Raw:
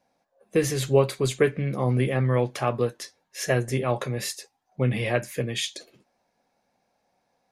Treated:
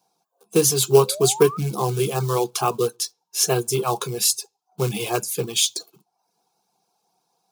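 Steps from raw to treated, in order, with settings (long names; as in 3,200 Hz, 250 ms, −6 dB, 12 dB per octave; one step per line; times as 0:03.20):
in parallel at −7 dB: log-companded quantiser 4 bits
on the sum: high-pass filter 160 Hz 12 dB per octave
phaser with its sweep stopped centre 380 Hz, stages 8
sound drawn into the spectrogram rise, 0:00.88–0:01.58, 350–1,300 Hz −37 dBFS
on a send at −17 dB: convolution reverb RT60 0.40 s, pre-delay 3 ms
on the sum: reverb reduction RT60 0.54 s
high-shelf EQ 3,600 Hz +9 dB
level +4 dB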